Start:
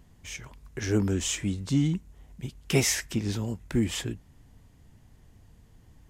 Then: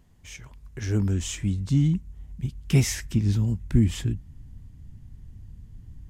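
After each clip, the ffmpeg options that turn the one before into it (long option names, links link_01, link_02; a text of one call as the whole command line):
ffmpeg -i in.wav -af "asubboost=boost=7:cutoff=210,volume=-3.5dB" out.wav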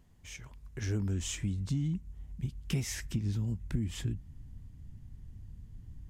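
ffmpeg -i in.wav -af "acompressor=threshold=-25dB:ratio=6,volume=-4dB" out.wav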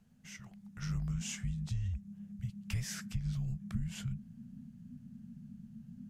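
ffmpeg -i in.wav -af "afreqshift=-250,volume=-3.5dB" out.wav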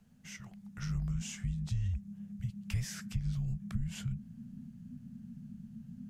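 ffmpeg -i in.wav -filter_complex "[0:a]acrossover=split=150[link_01][link_02];[link_02]acompressor=threshold=-44dB:ratio=3[link_03];[link_01][link_03]amix=inputs=2:normalize=0,volume=2.5dB" out.wav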